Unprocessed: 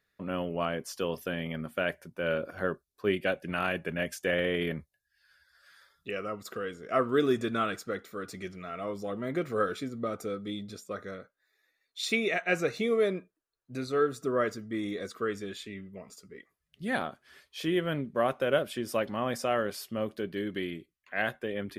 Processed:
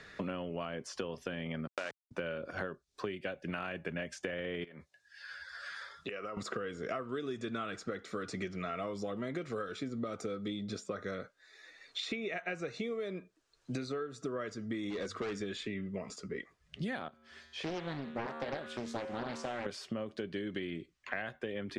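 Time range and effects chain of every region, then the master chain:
0:01.67–0:02.11: hold until the input has moved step −30.5 dBFS + meter weighting curve A
0:04.64–0:06.37: high-pass filter 490 Hz 6 dB per octave + downward compressor 16 to 1, threshold −46 dBFS
0:14.90–0:15.40: mains-hum notches 50/100/150 Hz + hard clipping −33.5 dBFS
0:17.08–0:19.66: tuned comb filter 77 Hz, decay 0.91 s, harmonics odd, mix 80% + highs frequency-modulated by the lows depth 0.7 ms
whole clip: downward compressor 10 to 1, threshold −40 dBFS; low-pass filter 7,500 Hz 24 dB per octave; multiband upward and downward compressor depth 70%; level +5 dB

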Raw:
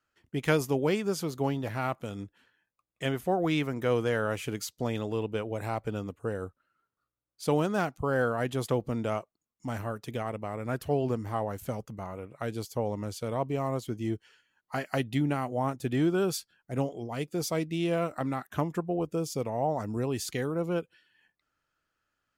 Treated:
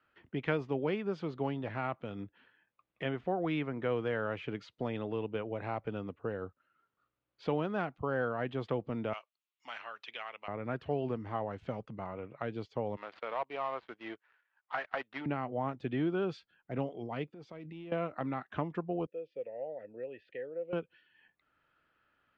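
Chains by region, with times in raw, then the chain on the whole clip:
0:09.13–0:10.48: high-pass filter 1,300 Hz + flat-topped bell 5,000 Hz +9.5 dB 2.3 octaves
0:12.96–0:15.26: running median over 15 samples + high-pass filter 930 Hz + leveller curve on the samples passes 2
0:17.30–0:17.92: transient designer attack −9 dB, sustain +2 dB + output level in coarse steps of 23 dB
0:19.06–0:20.73: formant filter e + high-frequency loss of the air 140 metres
whole clip: low-pass filter 3,300 Hz 24 dB per octave; low-shelf EQ 73 Hz −9.5 dB; multiband upward and downward compressor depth 40%; level −4.5 dB

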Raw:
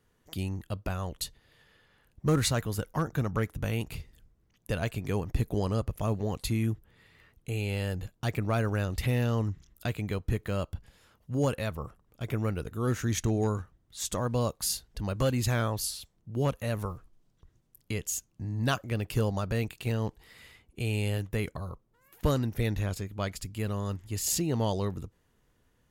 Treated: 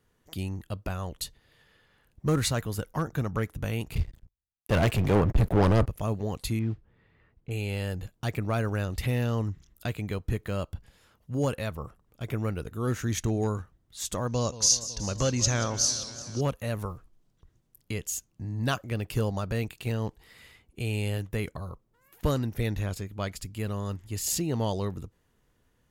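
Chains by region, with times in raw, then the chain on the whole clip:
0:03.95–0:05.86: leveller curve on the samples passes 5 + high-shelf EQ 3,100 Hz −11.5 dB + multiband upward and downward expander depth 100%
0:06.59–0:07.51: noise that follows the level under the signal 20 dB + head-to-tape spacing loss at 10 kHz 37 dB
0:14.27–0:16.41: low-pass with resonance 6,100 Hz, resonance Q 10 + feedback echo with a swinging delay time 186 ms, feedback 73%, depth 169 cents, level −15 dB
whole clip: no processing

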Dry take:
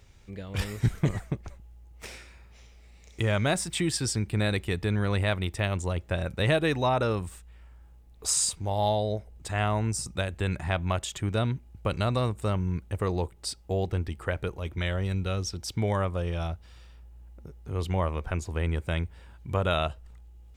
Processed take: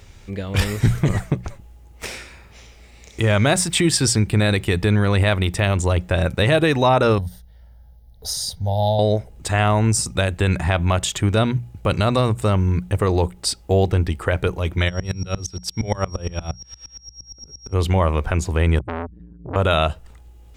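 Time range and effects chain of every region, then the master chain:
0:07.18–0:08.99: parametric band 1,700 Hz −13 dB 2.2 octaves + phaser with its sweep stopped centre 1,700 Hz, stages 8
0:14.88–0:17.72: steady tone 5,600 Hz −42 dBFS + tremolo with a ramp in dB swelling 8.6 Hz, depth 29 dB
0:18.79–0:19.56: expanding power law on the bin magnitudes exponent 2.3 + upward compression, threshold −39 dBFS + saturating transformer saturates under 1,400 Hz
whole clip: mains-hum notches 60/120/180 Hz; boost into a limiter +17.5 dB; level −6 dB

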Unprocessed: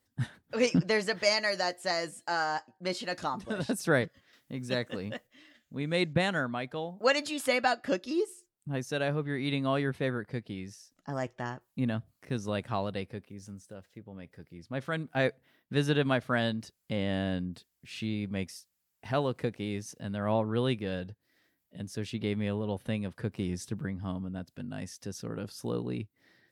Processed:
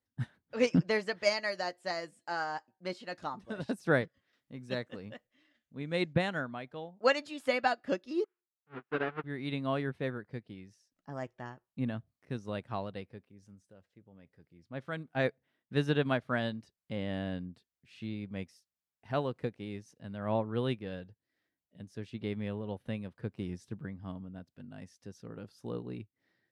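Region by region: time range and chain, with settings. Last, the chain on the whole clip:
0:08.24–0:09.24: each half-wave held at its own peak + loudspeaker in its box 230–2,700 Hz, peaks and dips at 390 Hz +4 dB, 580 Hz −8 dB, 1,400 Hz +9 dB + expander for the loud parts 2.5 to 1, over −40 dBFS
whole clip: high-shelf EQ 5,800 Hz −9.5 dB; expander for the loud parts 1.5 to 1, over −44 dBFS

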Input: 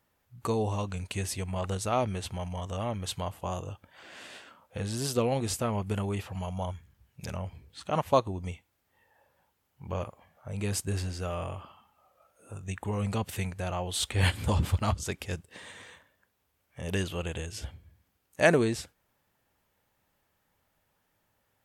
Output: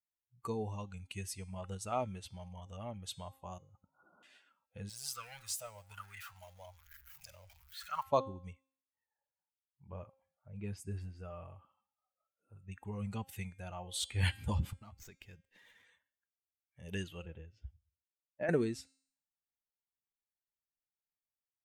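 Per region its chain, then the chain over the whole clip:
0:03.58–0:04.23: parametric band 160 Hz +5.5 dB 1.1 octaves + compressor whose output falls as the input rises −43 dBFS + linear-phase brick-wall low-pass 1,500 Hz
0:04.89–0:08.03: converter with a step at zero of −34.5 dBFS + guitar amp tone stack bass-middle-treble 10-0-10 + auto-filter bell 1.2 Hz 510–1,700 Hz +13 dB
0:08.53–0:12.72: high-shelf EQ 3,300 Hz −8.5 dB + multiband delay without the direct sound lows, highs 30 ms, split 5,600 Hz
0:14.73–0:15.85: high-pass filter 42 Hz + downward compressor 10 to 1, threshold −35 dBFS + windowed peak hold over 3 samples
0:17.25–0:18.49: downward compressor 8 to 1, threshold −26 dBFS + head-to-tape spacing loss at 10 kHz 29 dB + multiband upward and downward expander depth 70%
whole clip: spectral dynamics exaggerated over time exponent 1.5; hum removal 266.9 Hz, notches 37; level −5 dB

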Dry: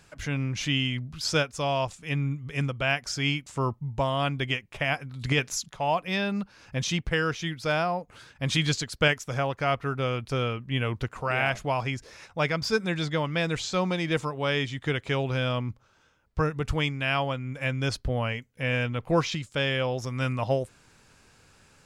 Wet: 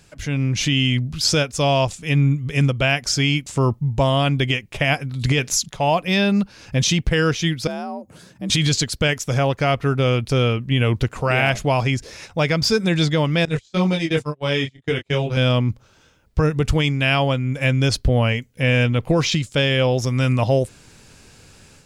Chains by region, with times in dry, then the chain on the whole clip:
0:07.67–0:08.50: parametric band 2,700 Hz −10.5 dB 2.3 octaves + downward compressor 1.5 to 1, threshold −50 dBFS + frequency shifter +54 Hz
0:13.45–0:15.37: de-essing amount 35% + noise gate −30 dBFS, range −31 dB + micro pitch shift up and down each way 13 cents
whole clip: parametric band 1,200 Hz −7 dB 1.7 octaves; automatic gain control gain up to 6 dB; brickwall limiter −13.5 dBFS; level +6 dB

